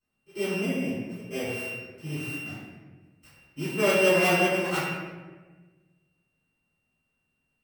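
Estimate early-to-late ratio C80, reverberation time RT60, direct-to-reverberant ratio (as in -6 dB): 1.0 dB, 1.3 s, -15.5 dB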